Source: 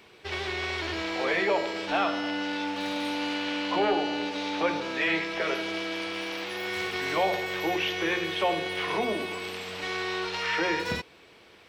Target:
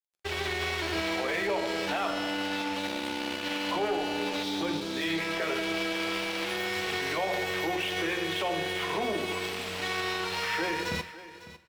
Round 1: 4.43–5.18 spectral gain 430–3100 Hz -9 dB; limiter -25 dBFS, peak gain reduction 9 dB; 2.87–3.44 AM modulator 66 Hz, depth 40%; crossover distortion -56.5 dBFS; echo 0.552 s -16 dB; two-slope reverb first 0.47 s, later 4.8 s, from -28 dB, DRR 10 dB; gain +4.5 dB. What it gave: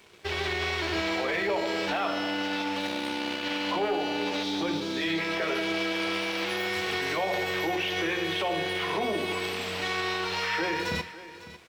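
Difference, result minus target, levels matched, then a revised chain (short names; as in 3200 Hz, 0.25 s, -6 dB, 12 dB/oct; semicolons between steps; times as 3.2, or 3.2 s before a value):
crossover distortion: distortion -12 dB
4.43–5.18 spectral gain 430–3100 Hz -9 dB; limiter -25 dBFS, peak gain reduction 9 dB; 2.87–3.44 AM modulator 66 Hz, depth 40%; crossover distortion -44.5 dBFS; echo 0.552 s -16 dB; two-slope reverb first 0.47 s, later 4.8 s, from -28 dB, DRR 10 dB; gain +4.5 dB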